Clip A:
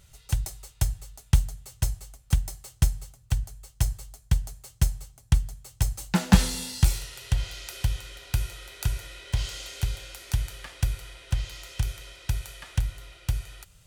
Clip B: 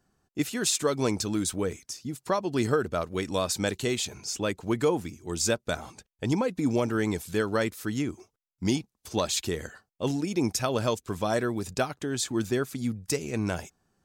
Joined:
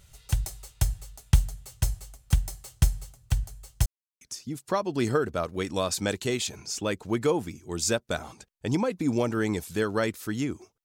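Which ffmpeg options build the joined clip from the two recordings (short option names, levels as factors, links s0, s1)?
-filter_complex "[0:a]apad=whole_dur=10.84,atrim=end=10.84,asplit=2[s0][s1];[s0]atrim=end=3.86,asetpts=PTS-STARTPTS,afade=t=out:st=3.856:d=0.004:c=hsin[s2];[s1]atrim=start=3.86:end=4.21,asetpts=PTS-STARTPTS,volume=0[s3];[1:a]atrim=start=1.79:end=8.42,asetpts=PTS-STARTPTS,afade=t=in:d=0.004:c=hsin[s4];[s2][s3][s4]concat=n=3:v=0:a=1"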